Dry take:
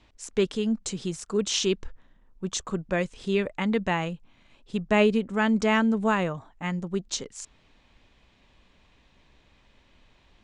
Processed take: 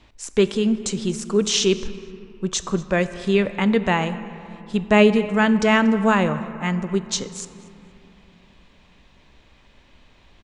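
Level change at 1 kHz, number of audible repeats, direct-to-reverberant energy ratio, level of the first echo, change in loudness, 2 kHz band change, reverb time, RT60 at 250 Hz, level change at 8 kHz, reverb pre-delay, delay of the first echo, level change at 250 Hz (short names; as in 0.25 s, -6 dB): +6.0 dB, 1, 11.0 dB, -21.5 dB, +6.5 dB, +6.5 dB, 2.9 s, 3.4 s, +6.0 dB, 5 ms, 0.235 s, +6.5 dB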